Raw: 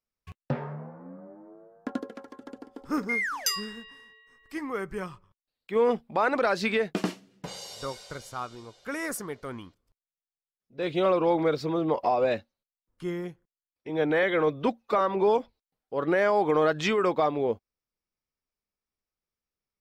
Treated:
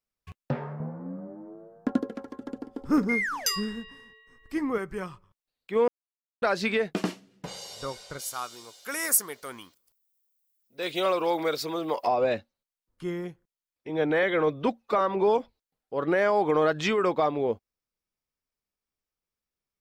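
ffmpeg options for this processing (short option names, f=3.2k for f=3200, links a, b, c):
-filter_complex "[0:a]asettb=1/sr,asplit=3[a][b][c];[a]atrim=end=0.804[d];[b]atrim=start=0.8:end=4.78,asetpts=PTS-STARTPTS,afade=t=in:d=0.004:c=qsin,afade=t=out:st=3.976:d=0.004:c=qsin,lowshelf=f=360:g=11[e];[c]atrim=start=4.776[f];[d][e]acrossfade=d=0.004:c1=hsin:c2=qsin[g];[g][f]acrossfade=d=0.004:c1=qsin:c2=hsin,asplit=3[h][i][j];[h]afade=t=out:st=8.18:d=0.02[k];[i]aemphasis=mode=production:type=riaa,afade=t=in:st=8.18:d=0.02,afade=t=out:st=12.06:d=0.02[l];[j]afade=t=in:st=12.06:d=0.02[m];[k][l][m]amix=inputs=3:normalize=0,asplit=3[n][o][p];[n]atrim=end=5.88,asetpts=PTS-STARTPTS,afade=t=out:st=5.876:d=0.004:c=hsin[q];[o]atrim=start=5.88:end=6.42,asetpts=PTS-STARTPTS,volume=0[r];[p]atrim=start=6.42,asetpts=PTS-STARTPTS,afade=t=in:d=0.004:c=hsin[s];[q][r][s]concat=n=3:v=0:a=1"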